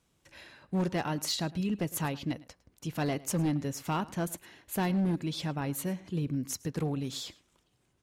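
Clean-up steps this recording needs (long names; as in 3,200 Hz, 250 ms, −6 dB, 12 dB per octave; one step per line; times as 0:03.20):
clipped peaks rebuilt −24.5 dBFS
echo removal 107 ms −21 dB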